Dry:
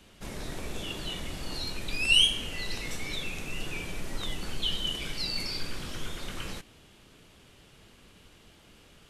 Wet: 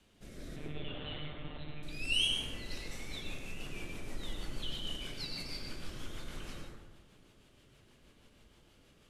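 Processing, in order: rotary cabinet horn 0.7 Hz, later 6.3 Hz, at 2.22 s; 0.56–1.83 s: monotone LPC vocoder at 8 kHz 150 Hz; reverberation RT60 1.3 s, pre-delay 82 ms, DRR 0.5 dB; trim -8 dB

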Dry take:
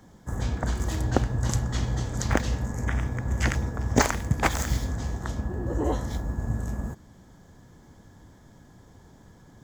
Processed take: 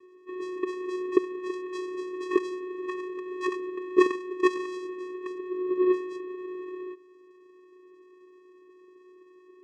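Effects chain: brick-wall FIR band-pass 190–4700 Hz; spectral gate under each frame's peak -30 dB strong; vocoder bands 4, square 366 Hz; trim +3.5 dB

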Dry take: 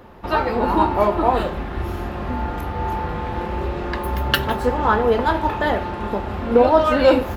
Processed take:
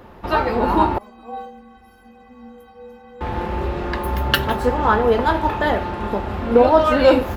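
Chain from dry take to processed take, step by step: 0.98–3.21 s: inharmonic resonator 230 Hz, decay 0.73 s, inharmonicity 0.03; trim +1 dB

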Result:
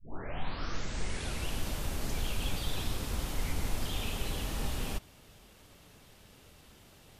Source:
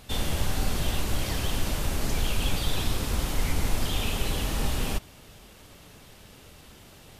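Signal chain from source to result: tape start-up on the opening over 1.64 s; trim -7 dB

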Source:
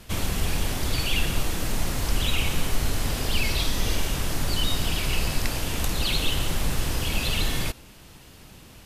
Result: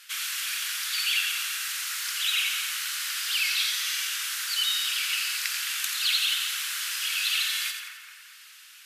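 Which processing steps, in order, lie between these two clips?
Chebyshev high-pass 1.4 kHz, order 4; two-band feedback delay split 2.2 kHz, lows 213 ms, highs 86 ms, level -6.5 dB; trim +2.5 dB

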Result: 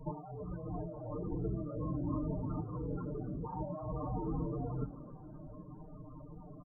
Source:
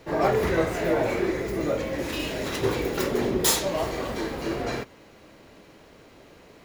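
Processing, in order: steep low-pass 1.3 kHz 48 dB/octave; peaking EQ 430 Hz -13.5 dB 1.6 oct; comb 6.6 ms, depth 77%; de-hum 47.15 Hz, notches 7; compressor with a negative ratio -40 dBFS, ratio -1; loudest bins only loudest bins 16; frequency-shifting echo 261 ms, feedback 48%, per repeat +110 Hz, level -20 dB; Shepard-style phaser falling 1.8 Hz; trim +3 dB

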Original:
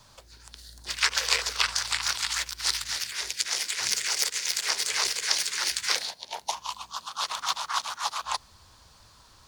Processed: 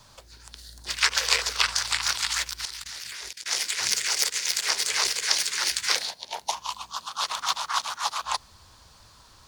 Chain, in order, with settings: 2.65–3.46 s: level held to a coarse grid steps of 20 dB; trim +2 dB

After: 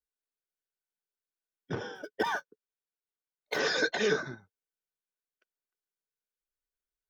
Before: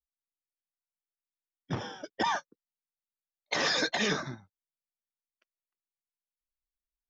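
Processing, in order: 1.95–3.59 s: median filter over 5 samples; small resonant body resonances 430/1500 Hz, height 12 dB, ringing for 30 ms; trim -4 dB

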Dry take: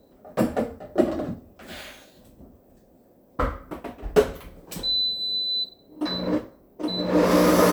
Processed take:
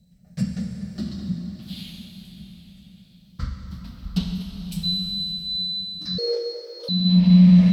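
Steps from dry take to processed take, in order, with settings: drifting ripple filter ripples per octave 0.51, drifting -0.38 Hz, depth 9 dB; FFT filter 120 Hz 0 dB, 190 Hz +11 dB, 310 Hz -28 dB, 460 Hz -29 dB, 720 Hz -22 dB, 1.2 kHz -23 dB, 4.5 kHz +5 dB, 6.9 kHz -4 dB; repeats whose band climbs or falls 223 ms, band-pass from 410 Hz, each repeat 0.7 oct, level -10 dB; low-pass that closes with the level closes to 2.1 kHz, closed at -12.5 dBFS; plate-style reverb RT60 4.6 s, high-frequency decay 0.85×, DRR 2 dB; 6.18–6.89 s: frequency shift +290 Hz

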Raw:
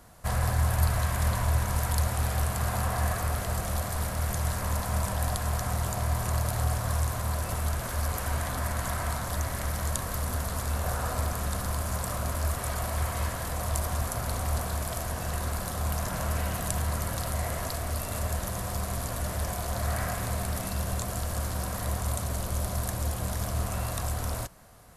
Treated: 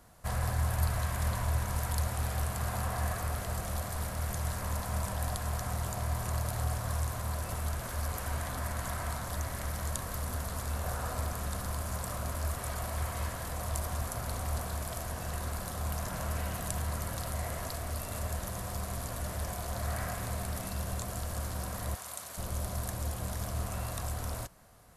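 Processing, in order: 21.95–22.38 s: high-pass 1.2 kHz 6 dB/octave; trim -5 dB

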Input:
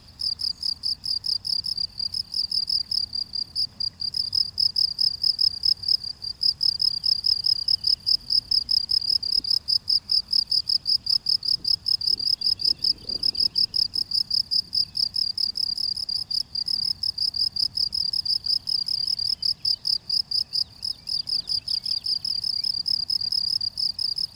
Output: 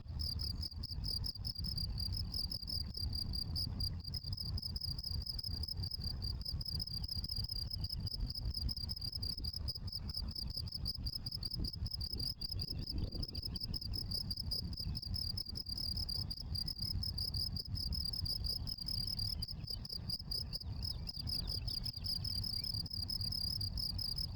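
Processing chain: coarse spectral quantiser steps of 15 dB; RIAA curve playback; slow attack 135 ms; peak limiter -27 dBFS, peak gain reduction 8 dB; Chebyshev shaper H 2 -22 dB, 3 -11 dB, 4 -10 dB, 6 -15 dB, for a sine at -5.5 dBFS; decimation joined by straight lines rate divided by 2×; trim +13 dB

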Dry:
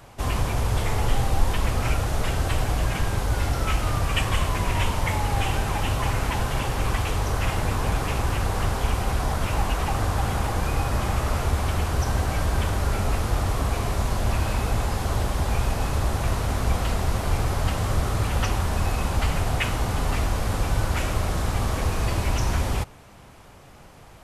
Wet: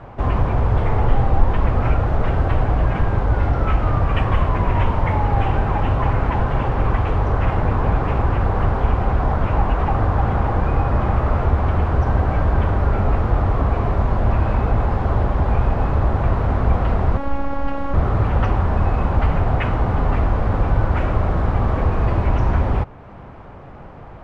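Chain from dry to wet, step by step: low-pass 1.4 kHz 12 dB/octave; in parallel at -3 dB: compression, threshold -37 dBFS, peak gain reduction 22.5 dB; 17.17–17.94 s: on the sum: robot voice 277 Hz; trim +5.5 dB

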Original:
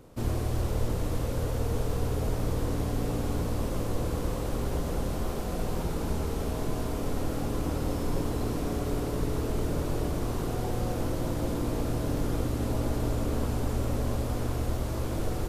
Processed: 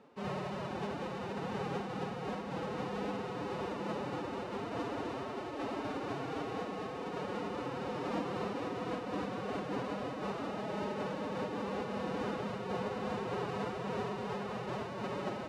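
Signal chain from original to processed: spectral contrast reduction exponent 0.7; band-stop 1.9 kHz, Q 10; formant-preserving pitch shift +9.5 st; band-pass 230–2400 Hz; random flutter of the level, depth 60%; trim -1 dB

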